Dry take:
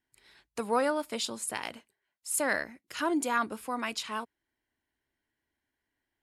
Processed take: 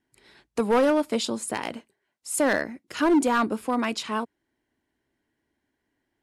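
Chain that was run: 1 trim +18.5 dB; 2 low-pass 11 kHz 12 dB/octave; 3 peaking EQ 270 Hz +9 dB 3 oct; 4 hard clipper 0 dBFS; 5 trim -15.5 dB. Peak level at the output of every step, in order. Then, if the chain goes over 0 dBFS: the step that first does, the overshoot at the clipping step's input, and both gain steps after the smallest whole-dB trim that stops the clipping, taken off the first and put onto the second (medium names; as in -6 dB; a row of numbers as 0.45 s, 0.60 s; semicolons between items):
+3.5 dBFS, +3.5 dBFS, +8.5 dBFS, 0.0 dBFS, -15.5 dBFS; step 1, 8.5 dB; step 1 +9.5 dB, step 5 -6.5 dB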